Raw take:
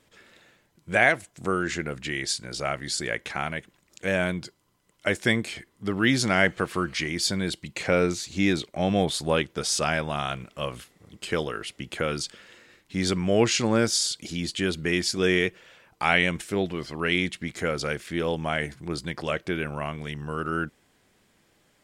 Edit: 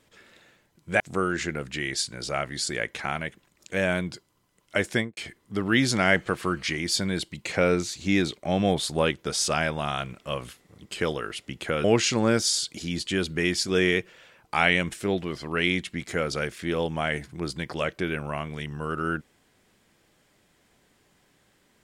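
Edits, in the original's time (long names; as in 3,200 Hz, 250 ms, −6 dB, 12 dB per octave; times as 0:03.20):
0:01.00–0:01.31: remove
0:05.22–0:05.48: fade out and dull
0:12.15–0:13.32: remove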